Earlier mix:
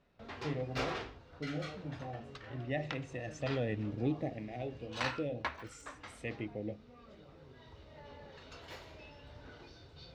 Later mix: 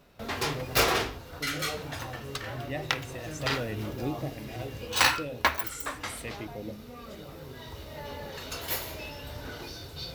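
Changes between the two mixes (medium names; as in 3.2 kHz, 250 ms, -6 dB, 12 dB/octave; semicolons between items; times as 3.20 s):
background +12.0 dB; master: remove distance through air 140 m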